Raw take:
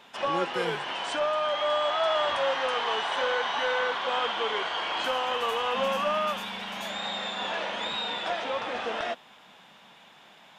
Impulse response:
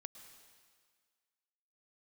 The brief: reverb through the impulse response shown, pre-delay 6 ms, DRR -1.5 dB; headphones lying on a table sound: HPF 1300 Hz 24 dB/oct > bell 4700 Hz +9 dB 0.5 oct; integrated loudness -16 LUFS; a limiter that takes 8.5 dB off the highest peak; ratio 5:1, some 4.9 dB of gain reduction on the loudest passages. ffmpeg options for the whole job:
-filter_complex "[0:a]acompressor=threshold=-28dB:ratio=5,alimiter=level_in=3.5dB:limit=-24dB:level=0:latency=1,volume=-3.5dB,asplit=2[a][b];[1:a]atrim=start_sample=2205,adelay=6[c];[b][c]afir=irnorm=-1:irlink=0,volume=7dB[d];[a][d]amix=inputs=2:normalize=0,highpass=f=1.3k:w=0.5412,highpass=f=1.3k:w=1.3066,equalizer=f=4.7k:t=o:w=0.5:g=9,volume=16.5dB"

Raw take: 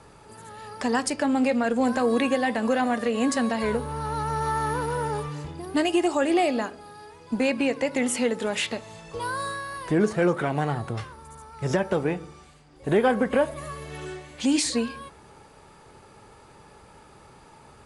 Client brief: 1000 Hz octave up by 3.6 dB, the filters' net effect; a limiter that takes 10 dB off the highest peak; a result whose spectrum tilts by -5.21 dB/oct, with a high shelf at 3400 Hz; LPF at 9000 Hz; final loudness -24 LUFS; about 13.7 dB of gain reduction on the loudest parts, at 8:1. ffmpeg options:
-af "lowpass=9k,equalizer=f=1k:t=o:g=5,highshelf=f=3.4k:g=-4,acompressor=threshold=-31dB:ratio=8,volume=13.5dB,alimiter=limit=-14.5dB:level=0:latency=1"

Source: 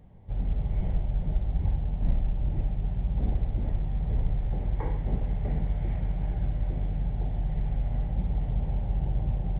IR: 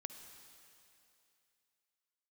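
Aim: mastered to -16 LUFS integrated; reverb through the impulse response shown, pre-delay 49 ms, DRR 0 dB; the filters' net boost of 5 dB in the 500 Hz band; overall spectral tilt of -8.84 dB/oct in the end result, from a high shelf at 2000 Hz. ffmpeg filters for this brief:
-filter_complex "[0:a]equalizer=f=500:t=o:g=6.5,highshelf=f=2k:g=-4,asplit=2[a][b];[1:a]atrim=start_sample=2205,adelay=49[c];[b][c]afir=irnorm=-1:irlink=0,volume=3.5dB[d];[a][d]amix=inputs=2:normalize=0,volume=9.5dB"

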